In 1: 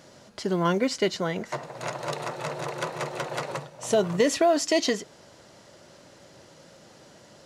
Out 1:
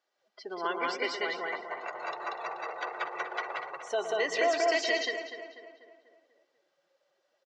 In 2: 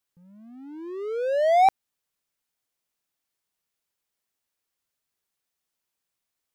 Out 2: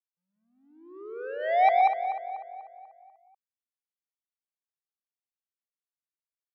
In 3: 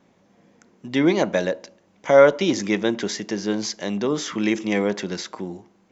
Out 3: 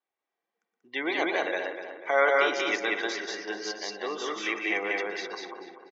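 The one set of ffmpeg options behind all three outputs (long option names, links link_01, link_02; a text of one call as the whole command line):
ffmpeg -i in.wav -filter_complex "[0:a]asplit=2[link_01][link_02];[link_02]aecho=0:1:119.5|186.6:0.355|0.891[link_03];[link_01][link_03]amix=inputs=2:normalize=0,afftdn=noise_reduction=22:noise_floor=-35,lowpass=4400,asplit=2[link_04][link_05];[link_05]adelay=245,lowpass=frequency=3000:poles=1,volume=-9dB,asplit=2[link_06][link_07];[link_07]adelay=245,lowpass=frequency=3000:poles=1,volume=0.51,asplit=2[link_08][link_09];[link_09]adelay=245,lowpass=frequency=3000:poles=1,volume=0.51,asplit=2[link_10][link_11];[link_11]adelay=245,lowpass=frequency=3000:poles=1,volume=0.51,asplit=2[link_12][link_13];[link_13]adelay=245,lowpass=frequency=3000:poles=1,volume=0.51,asplit=2[link_14][link_15];[link_15]adelay=245,lowpass=frequency=3000:poles=1,volume=0.51[link_16];[link_06][link_08][link_10][link_12][link_14][link_16]amix=inputs=6:normalize=0[link_17];[link_04][link_17]amix=inputs=2:normalize=0,adynamicequalizer=threshold=0.0126:dfrequency=2100:dqfactor=2.5:tfrequency=2100:tqfactor=2.5:attack=5:release=100:ratio=0.375:range=1.5:mode=boostabove:tftype=bell,highpass=740,aecho=1:1:2.6:0.45,volume=-3.5dB" out.wav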